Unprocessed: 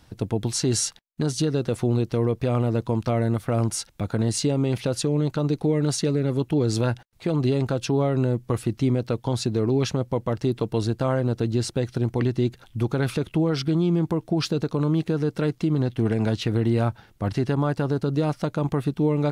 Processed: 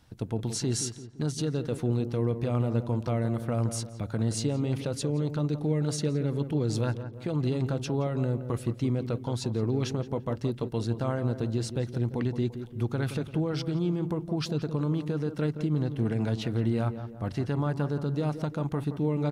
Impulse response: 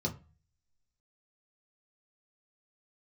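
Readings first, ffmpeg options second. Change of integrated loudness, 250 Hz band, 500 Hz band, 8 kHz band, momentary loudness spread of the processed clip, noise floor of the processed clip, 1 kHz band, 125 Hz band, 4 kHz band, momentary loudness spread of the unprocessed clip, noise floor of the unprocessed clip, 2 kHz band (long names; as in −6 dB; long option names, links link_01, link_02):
−5.5 dB, −5.5 dB, −6.5 dB, −7.0 dB, 4 LU, −43 dBFS, −6.5 dB, −4.5 dB, −7.0 dB, 4 LU, −56 dBFS, −6.5 dB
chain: -filter_complex "[0:a]asplit=2[link_01][link_02];[link_02]adelay=171,lowpass=frequency=1400:poles=1,volume=-9.5dB,asplit=2[link_03][link_04];[link_04]adelay=171,lowpass=frequency=1400:poles=1,volume=0.49,asplit=2[link_05][link_06];[link_06]adelay=171,lowpass=frequency=1400:poles=1,volume=0.49,asplit=2[link_07][link_08];[link_08]adelay=171,lowpass=frequency=1400:poles=1,volume=0.49,asplit=2[link_09][link_10];[link_10]adelay=171,lowpass=frequency=1400:poles=1,volume=0.49[link_11];[link_01][link_03][link_05][link_07][link_09][link_11]amix=inputs=6:normalize=0,asplit=2[link_12][link_13];[1:a]atrim=start_sample=2205[link_14];[link_13][link_14]afir=irnorm=-1:irlink=0,volume=-25.5dB[link_15];[link_12][link_15]amix=inputs=2:normalize=0,volume=-6.5dB"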